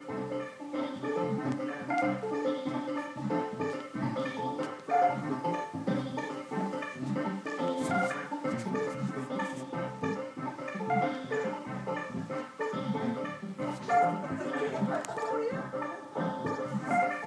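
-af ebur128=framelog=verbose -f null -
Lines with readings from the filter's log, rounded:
Integrated loudness:
  I:         -33.4 LUFS
  Threshold: -43.4 LUFS
Loudness range:
  LRA:         2.1 LU
  Threshold: -53.3 LUFS
  LRA low:   -34.4 LUFS
  LRA high:  -32.4 LUFS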